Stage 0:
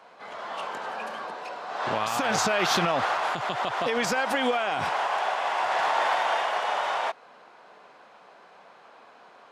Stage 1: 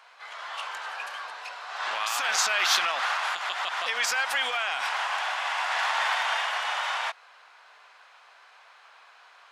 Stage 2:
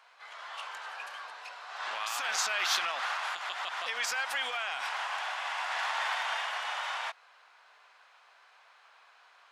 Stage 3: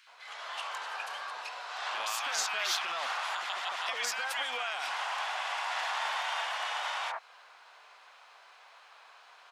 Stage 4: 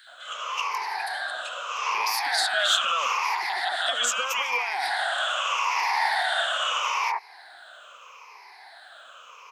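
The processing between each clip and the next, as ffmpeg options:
-af "highpass=1.4k,volume=4dB"
-af "bandreject=f=60:t=h:w=6,bandreject=f=120:t=h:w=6,bandreject=f=180:t=h:w=6,volume=-6dB"
-filter_complex "[0:a]acompressor=threshold=-38dB:ratio=2,acrossover=split=1700[a][b];[a]adelay=70[c];[c][b]amix=inputs=2:normalize=0,volume=5.5dB"
-af "afftfilt=real='re*pow(10,19/40*sin(2*PI*(0.81*log(max(b,1)*sr/1024/100)/log(2)-(-0.79)*(pts-256)/sr)))':imag='im*pow(10,19/40*sin(2*PI*(0.81*log(max(b,1)*sr/1024/100)/log(2)-(-0.79)*(pts-256)/sr)))':win_size=1024:overlap=0.75,volume=4.5dB"

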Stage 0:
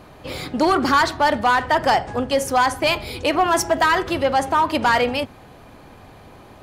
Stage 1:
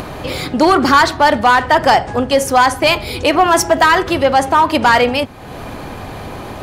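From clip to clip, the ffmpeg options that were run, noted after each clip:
-af "acompressor=mode=upward:threshold=-24dB:ratio=2.5,volume=6.5dB"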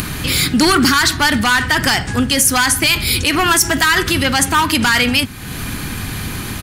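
-filter_complex "[0:a]asplit=2[a][b];[b]asoftclip=type=tanh:threshold=-14dB,volume=-10dB[c];[a][c]amix=inputs=2:normalize=0,firequalizer=gain_entry='entry(200,0);entry(580,-18);entry(1500,0);entry(9700,11)':delay=0.05:min_phase=1,alimiter=level_in=5dB:limit=-1dB:release=50:level=0:latency=1,volume=-1dB"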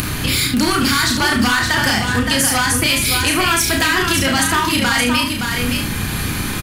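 -filter_complex "[0:a]asplit=2[a][b];[b]aecho=0:1:33|70:0.668|0.355[c];[a][c]amix=inputs=2:normalize=0,acompressor=threshold=-14dB:ratio=4,asplit=2[d][e];[e]aecho=0:1:569:0.562[f];[d][f]amix=inputs=2:normalize=0"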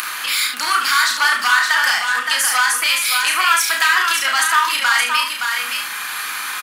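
-af "highpass=f=1.2k:t=q:w=1.9,volume=-1.5dB"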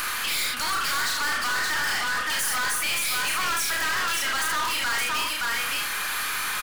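-af "aeval=exprs='(tanh(20*val(0)+0.4)-tanh(0.4))/20':c=same,volume=1.5dB"

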